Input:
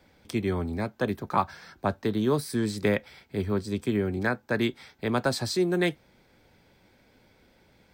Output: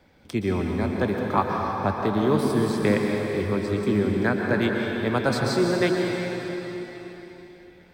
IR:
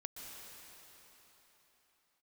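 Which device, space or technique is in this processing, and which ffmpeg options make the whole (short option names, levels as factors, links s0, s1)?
swimming-pool hall: -filter_complex "[1:a]atrim=start_sample=2205[s0];[0:a][s0]afir=irnorm=-1:irlink=0,highshelf=f=4200:g=-6,volume=2.37"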